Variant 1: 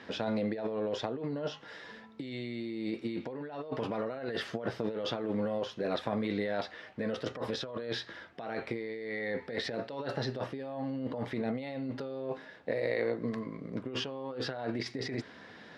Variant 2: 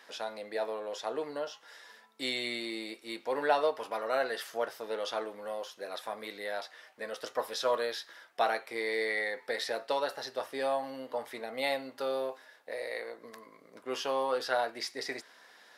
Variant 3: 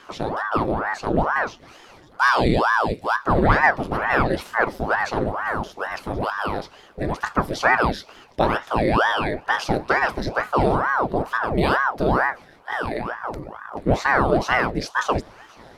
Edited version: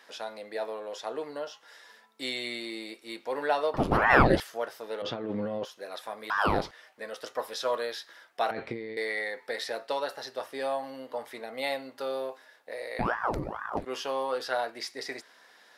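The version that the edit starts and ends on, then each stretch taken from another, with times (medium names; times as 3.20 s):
2
3.74–4.40 s: from 3
5.02–5.65 s: from 1
6.30–6.71 s: from 3
8.51–8.97 s: from 1
12.99–13.85 s: from 3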